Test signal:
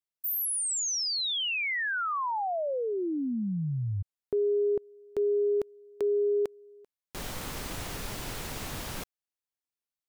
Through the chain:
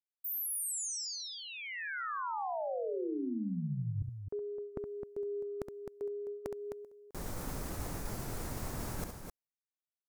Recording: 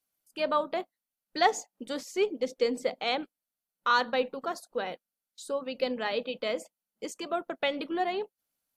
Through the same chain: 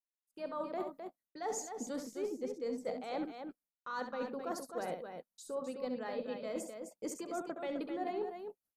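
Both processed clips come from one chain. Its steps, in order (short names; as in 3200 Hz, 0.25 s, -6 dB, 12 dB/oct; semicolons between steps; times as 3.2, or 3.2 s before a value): low shelf 410 Hz +4 dB; vibrato 0.32 Hz 12 cents; reverse; compressor 12:1, threshold -37 dBFS; reverse; expander -60 dBFS; bell 3100 Hz -11 dB 1.2 oct; on a send: loudspeakers at several distances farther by 23 m -8 dB, 89 m -7 dB; on the sum: gain +1.5 dB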